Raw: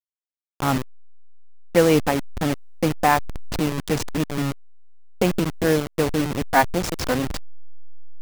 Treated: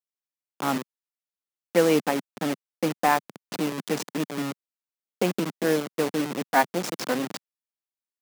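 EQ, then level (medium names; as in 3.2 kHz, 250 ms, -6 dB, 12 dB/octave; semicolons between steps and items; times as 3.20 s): high-pass 180 Hz 24 dB/octave; -3.5 dB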